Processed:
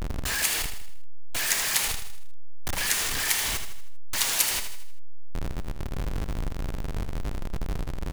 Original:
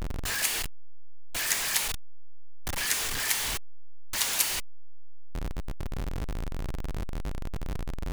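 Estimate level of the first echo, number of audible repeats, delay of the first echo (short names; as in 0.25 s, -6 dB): -9.0 dB, 4, 79 ms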